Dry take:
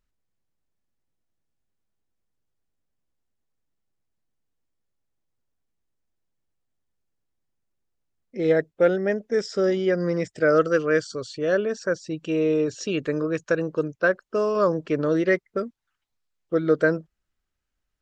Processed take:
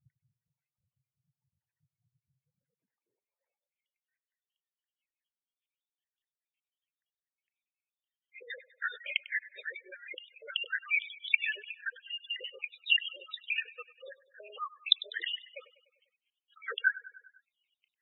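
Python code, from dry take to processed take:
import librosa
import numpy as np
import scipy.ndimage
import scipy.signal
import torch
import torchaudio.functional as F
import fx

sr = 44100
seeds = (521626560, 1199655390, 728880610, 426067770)

p1 = fx.spec_dropout(x, sr, seeds[0], share_pct=74)
p2 = fx.lpc_vocoder(p1, sr, seeds[1], excitation='whisper', order=8)
p3 = fx.graphic_eq(p2, sr, hz=(125, 250, 500, 2000), db=(5, -5, 8, 11))
p4 = fx.rider(p3, sr, range_db=4, speed_s=0.5)
p5 = fx.filter_sweep_highpass(p4, sr, from_hz=130.0, to_hz=3000.0, start_s=2.41, end_s=4.53, q=2.9)
p6 = p5 + fx.echo_feedback(p5, sr, ms=99, feedback_pct=60, wet_db=-18.5, dry=0)
y = fx.spec_gate(p6, sr, threshold_db=-10, keep='strong')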